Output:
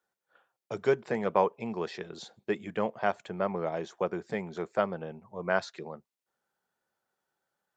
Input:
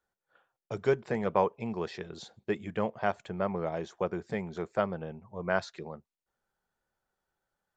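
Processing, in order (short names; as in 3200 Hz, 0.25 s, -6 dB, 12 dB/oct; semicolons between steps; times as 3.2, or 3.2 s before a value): Bessel high-pass 180 Hz, order 2; gain +1.5 dB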